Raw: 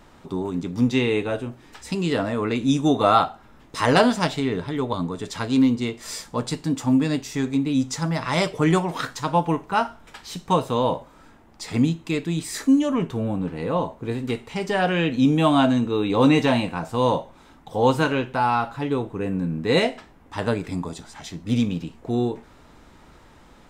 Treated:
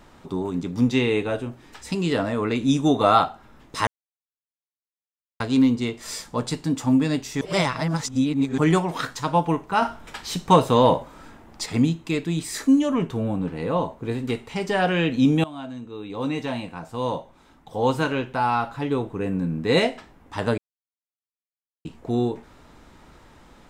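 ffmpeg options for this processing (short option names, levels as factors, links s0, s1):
-filter_complex "[0:a]asettb=1/sr,asplit=3[s0][s1][s2];[s0]atrim=end=9.824[s3];[s1]atrim=start=9.82:end=11.66,asetpts=PTS-STARTPTS,afade=t=in:d=0.004:c=qsin,afade=t=out:st=1.836:d=0.004:c=qsin,acontrast=38[s4];[s2]atrim=start=11.656[s5];[s3][s4]acrossfade=d=0.004:c1=hsin:c2=qsin[s6];[s6][s5]acrossfade=d=0.004:c1=qsin:c2=hsin,asplit=8[s7][s8][s9][s10][s11][s12][s13][s14];[s7]atrim=end=3.87,asetpts=PTS-STARTPTS,afade=t=out:st=3.866:d=0.004:c=hsin[s15];[s8]atrim=start=3.87:end=5.4,asetpts=PTS-STARTPTS,volume=0[s16];[s9]atrim=start=5.4:end=7.412,asetpts=PTS-STARTPTS,afade=t=in:d=0.004:c=hsin[s17];[s10]atrim=start=7.408:end=8.582,asetpts=PTS-STARTPTS,areverse[s18];[s11]atrim=start=8.578:end=15.44,asetpts=PTS-STARTPTS,afade=t=out:st=6.858:d=0.004:c=hsin:silence=0.0891251[s19];[s12]atrim=start=15.44:end=20.58,asetpts=PTS-STARTPTS,afade=t=in:d=3.57:silence=0.0891251,afade=t=out:st=5.136:d=0.004:c=hsin[s20];[s13]atrim=start=20.58:end=21.85,asetpts=PTS-STARTPTS,volume=0[s21];[s14]atrim=start=21.85,asetpts=PTS-STARTPTS,afade=t=in:d=0.004:c=hsin[s22];[s15][s16][s17]concat=n=3:v=0:a=1[s23];[s23][s18]acrossfade=d=0.004:c1=hsin:c2=hsin[s24];[s19][s20][s21][s22]concat=n=4:v=0:a=1[s25];[s24][s25]acrossfade=d=0.004:c1=hsin:c2=hsin"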